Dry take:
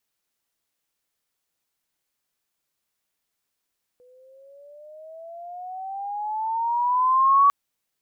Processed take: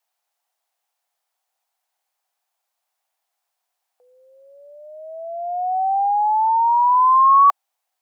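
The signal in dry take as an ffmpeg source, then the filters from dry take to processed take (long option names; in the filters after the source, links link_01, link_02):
-f lavfi -i "aevalsrc='pow(10,(-12+39*(t/3.5-1))/20)*sin(2*PI*492*3.5/(14.5*log(2)/12)*(exp(14.5*log(2)/12*t/3.5)-1))':duration=3.5:sample_rate=44100"
-af "highpass=frequency=750:width_type=q:width=4.9"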